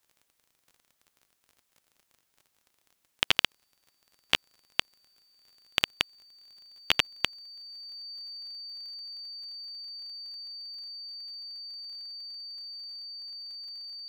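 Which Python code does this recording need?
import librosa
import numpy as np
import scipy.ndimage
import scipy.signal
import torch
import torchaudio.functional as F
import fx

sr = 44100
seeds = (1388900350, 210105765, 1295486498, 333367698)

y = fx.fix_declick_ar(x, sr, threshold=6.5)
y = fx.notch(y, sr, hz=4600.0, q=30.0)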